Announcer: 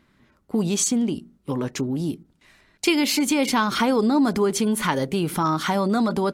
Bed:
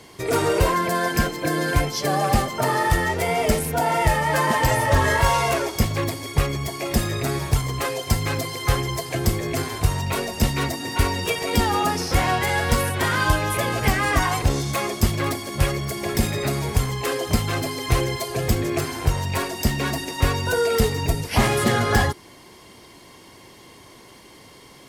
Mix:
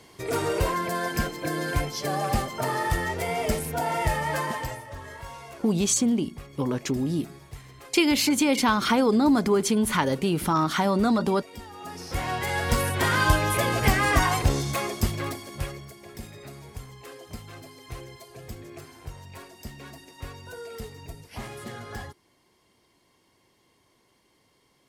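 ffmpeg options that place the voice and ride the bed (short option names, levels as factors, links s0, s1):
-filter_complex "[0:a]adelay=5100,volume=0.891[s0];[1:a]volume=5.62,afade=t=out:st=4.28:d=0.56:silence=0.158489,afade=t=in:st=11.77:d=1.38:silence=0.0891251,afade=t=out:st=14.25:d=1.72:silence=0.125893[s1];[s0][s1]amix=inputs=2:normalize=0"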